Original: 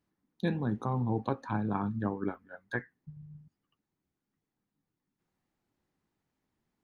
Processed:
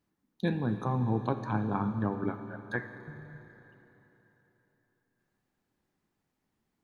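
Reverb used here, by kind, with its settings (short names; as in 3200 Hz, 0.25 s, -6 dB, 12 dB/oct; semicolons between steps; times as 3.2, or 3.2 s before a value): Schroeder reverb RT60 3.7 s, combs from 28 ms, DRR 8.5 dB; gain +1 dB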